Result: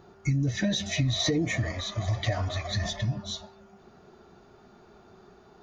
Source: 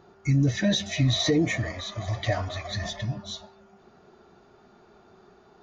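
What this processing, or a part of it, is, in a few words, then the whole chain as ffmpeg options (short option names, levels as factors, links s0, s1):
ASMR close-microphone chain: -af "lowshelf=f=180:g=5,acompressor=threshold=0.0708:ratio=6,highshelf=f=6500:g=4.5"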